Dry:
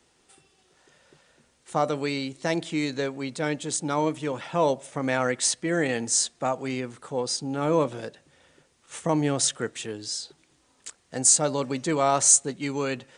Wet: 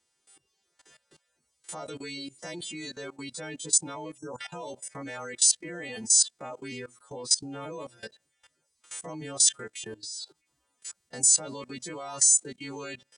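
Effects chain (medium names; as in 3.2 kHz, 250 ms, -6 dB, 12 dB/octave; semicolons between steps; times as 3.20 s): partials quantised in pitch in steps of 2 st; reverb removal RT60 0.75 s; spectral selection erased 4.17–4.39 s, 1.6–5 kHz; level held to a coarse grid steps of 19 dB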